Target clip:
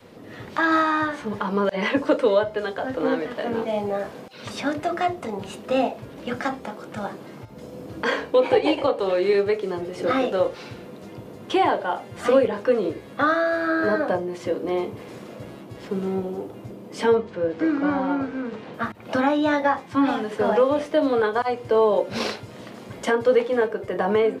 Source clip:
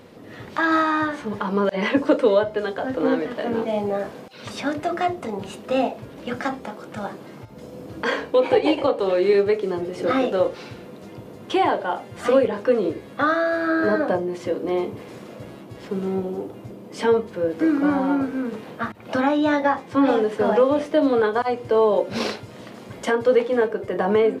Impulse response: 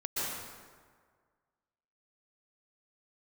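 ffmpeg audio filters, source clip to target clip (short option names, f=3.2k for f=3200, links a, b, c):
-filter_complex "[0:a]adynamicequalizer=threshold=0.0251:dfrequency=270:dqfactor=0.83:tfrequency=270:tqfactor=0.83:attack=5:release=100:ratio=0.375:range=2:mode=cutabove:tftype=bell,asettb=1/sr,asplit=3[a][b][c];[a]atrim=end=17.154[d];[b]atrim=start=17.15:end=18.74,asetpts=PTS-STARTPTS,afade=t=in:d=0.004:c=qsin,afade=t=out:st=1.586:d=0.004:c=qsin,lowpass=5.2k[e];[c]atrim=start=18.736[f];[d][e]acrossfade=d=0.004:c1=hsin:c2=qsin[g];[g][f]acrossfade=d=0.004:c1=qsin:c2=hsin,asettb=1/sr,asplit=3[h][i][j];[h]atrim=end=19.864[k];[i]atrim=start=19.86:end=20.31,asetpts=PTS-STARTPTS,afade=t=in:d=0.004:c=qsin,afade=t=out:st=0.446:d=0.004:c=qsin,equalizer=f=480:t=o:w=0.41:g=-14.5[l];[j]atrim=start=20.306[m];[k][l]acrossfade=d=0.004:c1=hsin:c2=qsin[n];[n][m]acrossfade=d=0.004:c1=qsin:c2=hsin"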